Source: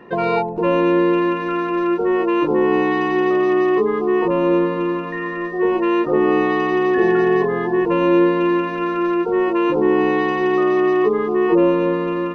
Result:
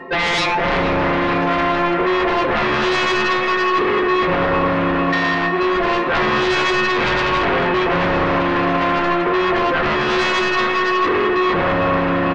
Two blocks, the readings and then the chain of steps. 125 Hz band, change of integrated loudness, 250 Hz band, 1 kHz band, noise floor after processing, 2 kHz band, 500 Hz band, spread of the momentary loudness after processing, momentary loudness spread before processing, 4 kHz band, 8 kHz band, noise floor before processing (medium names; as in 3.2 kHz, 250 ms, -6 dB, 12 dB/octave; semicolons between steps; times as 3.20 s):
+4.5 dB, +0.5 dB, -3.5 dB, +5.0 dB, -18 dBFS, +7.5 dB, -2.5 dB, 1 LU, 5 LU, +13.0 dB, no reading, -25 dBFS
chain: tone controls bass +1 dB, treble -9 dB; hum notches 50/100/150/200/250/300/350 Hz; inharmonic resonator 79 Hz, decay 0.34 s, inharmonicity 0.03; feedback delay 109 ms, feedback 53%, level -9 dB; reverse; upward compressor, threshold -23 dBFS; reverse; bass shelf 290 Hz -6.5 dB; sine folder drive 14 dB, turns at -15 dBFS; on a send: feedback echo behind a band-pass 447 ms, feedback 80%, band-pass 1.4 kHz, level -7 dB